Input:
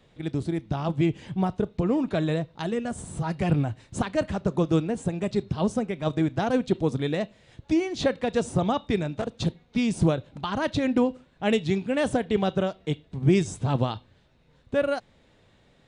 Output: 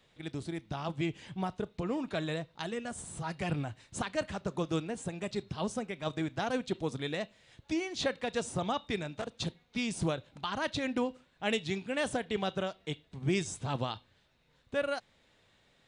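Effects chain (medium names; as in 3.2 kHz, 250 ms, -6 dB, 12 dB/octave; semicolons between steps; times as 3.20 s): tilt shelf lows -5 dB, about 810 Hz; trim -6.5 dB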